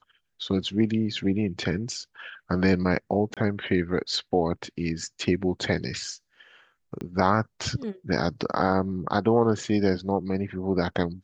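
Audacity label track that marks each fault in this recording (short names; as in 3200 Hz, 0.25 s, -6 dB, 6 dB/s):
3.340000	3.370000	gap 27 ms
7.010000	7.010000	pop -22 dBFS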